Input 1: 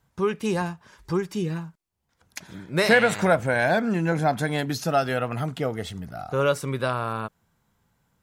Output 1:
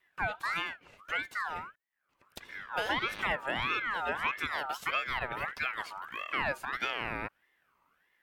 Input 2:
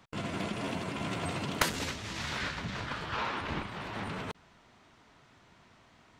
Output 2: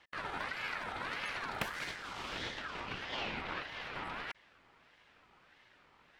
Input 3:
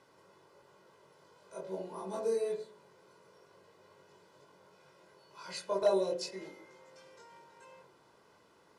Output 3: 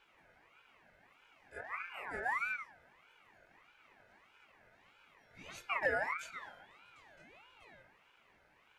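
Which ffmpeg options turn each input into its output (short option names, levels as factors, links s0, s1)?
-filter_complex "[0:a]acrossover=split=230|630[s0][s1][s2];[s0]acompressor=threshold=0.00794:ratio=4[s3];[s1]acompressor=threshold=0.0251:ratio=4[s4];[s2]acompressor=threshold=0.0282:ratio=4[s5];[s3][s4][s5]amix=inputs=3:normalize=0,equalizer=f=6500:t=o:w=2.1:g=-10,aeval=exprs='val(0)*sin(2*PI*1500*n/s+1500*0.3/1.6*sin(2*PI*1.6*n/s))':c=same"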